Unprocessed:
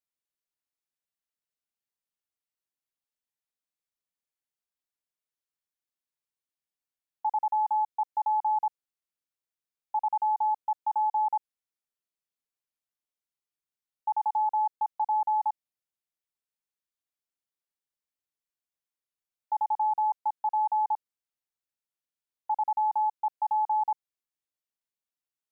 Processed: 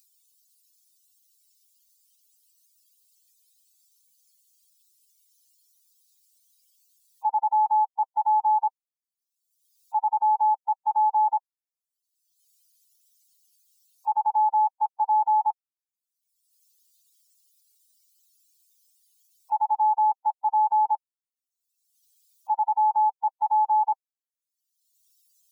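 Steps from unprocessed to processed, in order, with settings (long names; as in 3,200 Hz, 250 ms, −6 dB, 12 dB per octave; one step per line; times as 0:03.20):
spectral dynamics exaggerated over time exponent 3
upward compression, threshold −45 dBFS
level +6 dB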